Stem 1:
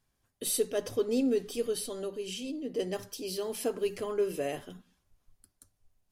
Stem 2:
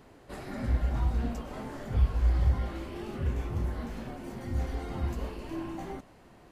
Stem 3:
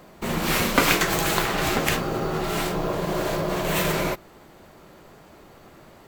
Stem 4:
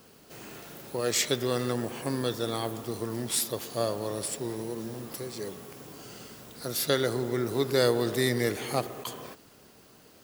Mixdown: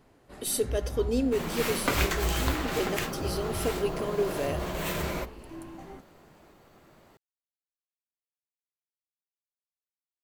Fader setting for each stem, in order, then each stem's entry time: +1.0 dB, -6.0 dB, -8.5 dB, mute; 0.00 s, 0.00 s, 1.10 s, mute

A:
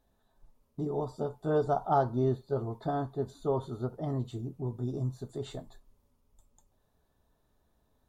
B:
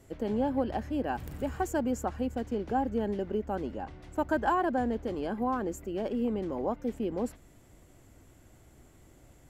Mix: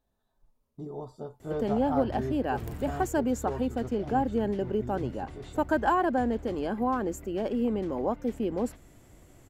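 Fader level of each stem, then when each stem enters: -6.0 dB, +2.5 dB; 0.00 s, 1.40 s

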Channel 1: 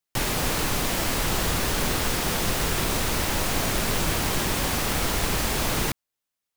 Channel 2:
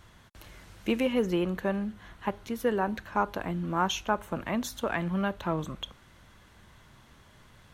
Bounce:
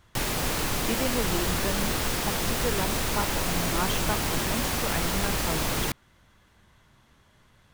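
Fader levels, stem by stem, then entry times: -2.5 dB, -4.0 dB; 0.00 s, 0.00 s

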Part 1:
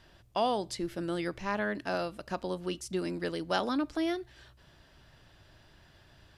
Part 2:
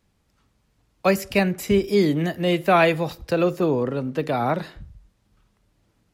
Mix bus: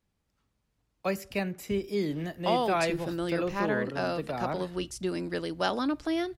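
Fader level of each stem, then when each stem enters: +1.5 dB, -11.0 dB; 2.10 s, 0.00 s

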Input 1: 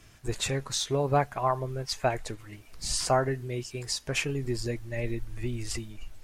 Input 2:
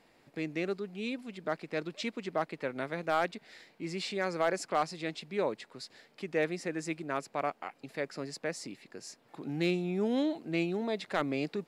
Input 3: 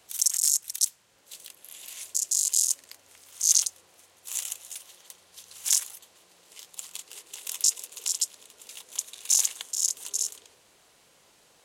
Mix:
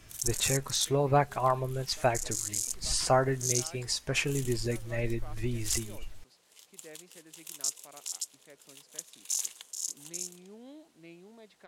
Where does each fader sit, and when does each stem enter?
0.0 dB, -20.0 dB, -9.5 dB; 0.00 s, 0.50 s, 0.00 s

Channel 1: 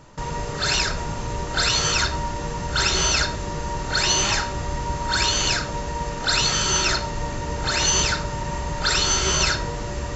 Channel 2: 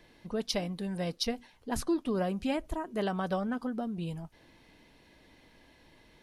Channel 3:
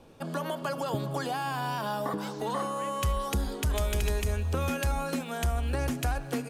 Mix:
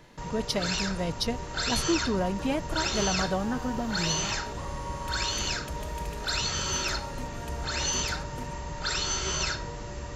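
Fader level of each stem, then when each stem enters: -9.0 dB, +2.5 dB, -11.5 dB; 0.00 s, 0.00 s, 2.05 s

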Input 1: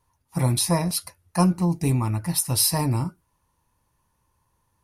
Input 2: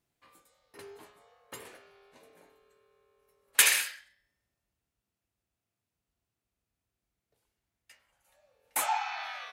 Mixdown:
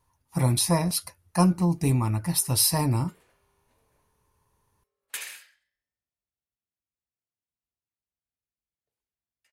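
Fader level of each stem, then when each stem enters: -1.0 dB, -14.0 dB; 0.00 s, 1.55 s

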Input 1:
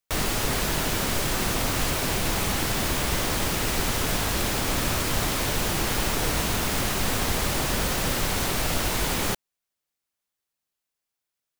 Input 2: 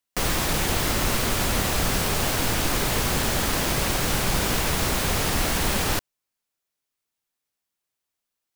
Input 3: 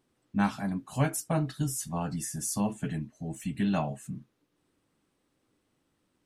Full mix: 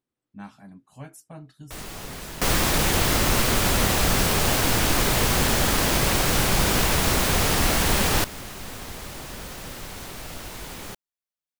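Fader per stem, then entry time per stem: -11.5 dB, +2.5 dB, -14.0 dB; 1.60 s, 2.25 s, 0.00 s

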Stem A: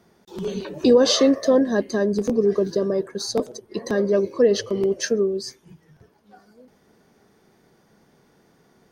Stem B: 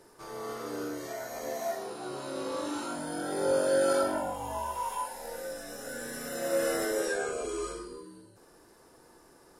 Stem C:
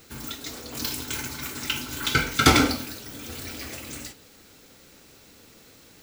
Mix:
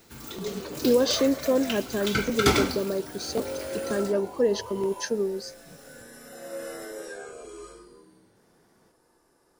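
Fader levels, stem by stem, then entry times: -6.0 dB, -8.0 dB, -5.5 dB; 0.00 s, 0.00 s, 0.00 s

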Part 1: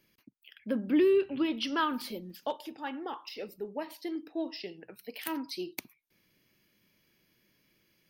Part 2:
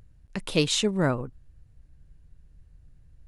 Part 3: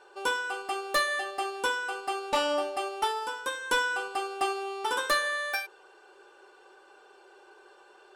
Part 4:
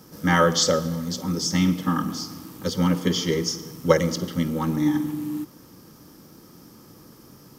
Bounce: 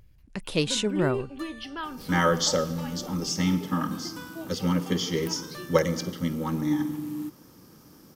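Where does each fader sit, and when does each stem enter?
-6.0 dB, -2.0 dB, -18.0 dB, -4.0 dB; 0.00 s, 0.00 s, 0.45 s, 1.85 s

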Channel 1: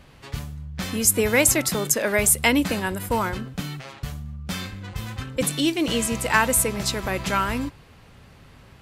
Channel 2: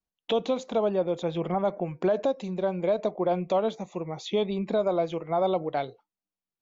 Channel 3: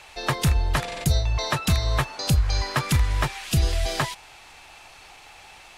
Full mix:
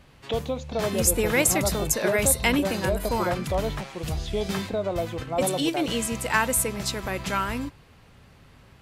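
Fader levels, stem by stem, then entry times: -3.5 dB, -2.5 dB, -11.0 dB; 0.00 s, 0.00 s, 0.55 s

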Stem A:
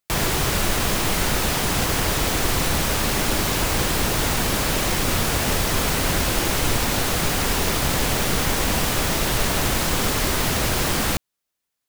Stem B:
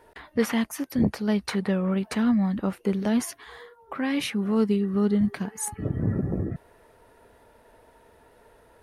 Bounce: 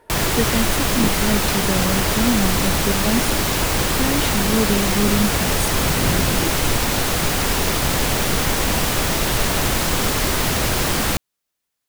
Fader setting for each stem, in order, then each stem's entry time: +2.0 dB, +2.0 dB; 0.00 s, 0.00 s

